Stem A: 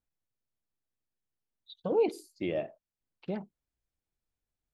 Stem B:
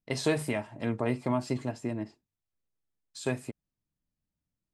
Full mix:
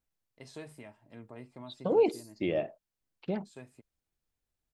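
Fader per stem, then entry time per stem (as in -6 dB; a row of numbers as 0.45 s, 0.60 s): +2.0 dB, -18.0 dB; 0.00 s, 0.30 s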